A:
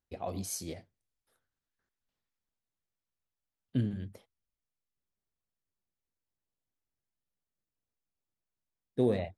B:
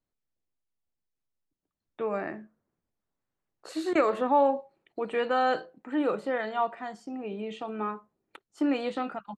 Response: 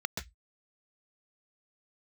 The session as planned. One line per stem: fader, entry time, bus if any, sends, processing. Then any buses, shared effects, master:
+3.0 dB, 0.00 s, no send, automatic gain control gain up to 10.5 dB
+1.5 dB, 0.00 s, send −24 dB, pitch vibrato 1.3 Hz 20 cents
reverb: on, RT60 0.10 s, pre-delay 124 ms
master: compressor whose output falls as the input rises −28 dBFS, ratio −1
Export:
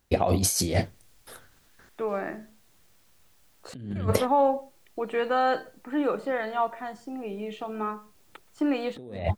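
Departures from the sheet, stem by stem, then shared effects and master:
stem A +3.0 dB → +10.5 dB
stem B +1.5 dB → −8.0 dB

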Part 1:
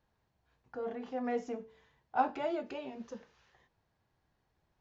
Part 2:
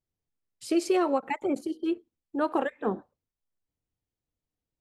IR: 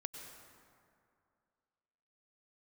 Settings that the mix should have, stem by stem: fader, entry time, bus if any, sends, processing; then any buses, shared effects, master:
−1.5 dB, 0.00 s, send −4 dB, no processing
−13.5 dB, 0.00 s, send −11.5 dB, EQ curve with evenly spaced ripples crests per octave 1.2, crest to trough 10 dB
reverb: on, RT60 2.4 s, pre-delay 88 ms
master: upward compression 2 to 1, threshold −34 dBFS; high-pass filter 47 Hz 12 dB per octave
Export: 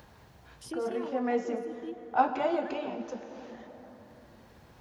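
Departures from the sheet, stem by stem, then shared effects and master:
stem 2 −13.5 dB → −21.0 dB
reverb return +8.5 dB

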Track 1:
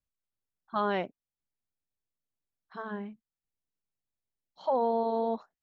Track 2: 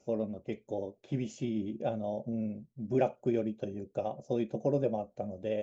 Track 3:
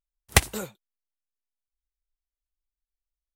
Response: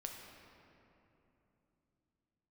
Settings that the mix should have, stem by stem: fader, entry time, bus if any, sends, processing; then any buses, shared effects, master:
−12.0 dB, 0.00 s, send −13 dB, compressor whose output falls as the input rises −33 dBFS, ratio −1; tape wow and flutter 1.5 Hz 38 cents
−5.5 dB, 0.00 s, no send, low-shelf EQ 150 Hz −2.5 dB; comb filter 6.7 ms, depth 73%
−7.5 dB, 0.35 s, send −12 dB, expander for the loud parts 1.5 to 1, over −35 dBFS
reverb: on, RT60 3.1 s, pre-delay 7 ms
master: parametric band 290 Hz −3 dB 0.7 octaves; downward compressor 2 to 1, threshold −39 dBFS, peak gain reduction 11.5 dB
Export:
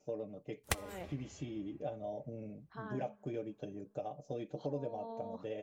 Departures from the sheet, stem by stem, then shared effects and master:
stem 1: missing tape wow and flutter 1.5 Hz 38 cents
master: missing parametric band 290 Hz −3 dB 0.7 octaves

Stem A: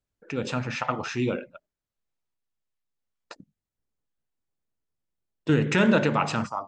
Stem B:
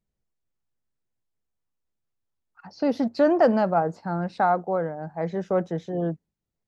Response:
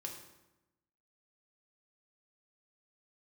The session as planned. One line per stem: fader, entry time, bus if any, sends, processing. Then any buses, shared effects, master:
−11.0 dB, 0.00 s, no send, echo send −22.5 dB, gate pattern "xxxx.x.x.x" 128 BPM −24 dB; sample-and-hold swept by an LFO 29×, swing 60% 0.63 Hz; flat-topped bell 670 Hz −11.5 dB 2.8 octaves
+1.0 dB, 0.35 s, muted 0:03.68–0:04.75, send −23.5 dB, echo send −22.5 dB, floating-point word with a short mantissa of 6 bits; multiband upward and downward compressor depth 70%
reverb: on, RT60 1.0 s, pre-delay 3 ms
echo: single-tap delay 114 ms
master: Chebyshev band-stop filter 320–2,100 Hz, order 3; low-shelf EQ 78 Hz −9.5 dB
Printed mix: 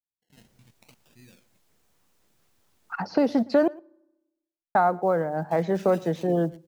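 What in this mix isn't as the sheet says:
stem A −11.0 dB → −21.5 dB
master: missing Chebyshev band-stop filter 320–2,100 Hz, order 3

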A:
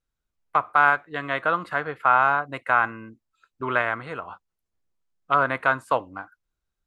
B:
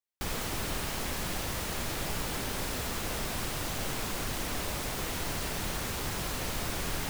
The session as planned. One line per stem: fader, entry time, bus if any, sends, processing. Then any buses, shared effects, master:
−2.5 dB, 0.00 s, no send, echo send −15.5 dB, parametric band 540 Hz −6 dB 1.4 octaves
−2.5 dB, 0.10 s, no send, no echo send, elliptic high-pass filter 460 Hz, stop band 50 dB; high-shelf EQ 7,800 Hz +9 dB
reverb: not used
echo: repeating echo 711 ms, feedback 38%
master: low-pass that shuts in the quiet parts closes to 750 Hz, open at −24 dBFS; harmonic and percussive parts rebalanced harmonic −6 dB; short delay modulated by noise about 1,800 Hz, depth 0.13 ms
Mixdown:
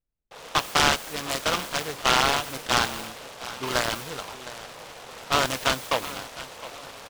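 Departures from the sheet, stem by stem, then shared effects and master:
stem A: missing parametric band 540 Hz −6 dB 1.4 octaves
master: missing harmonic and percussive parts rebalanced harmonic −6 dB

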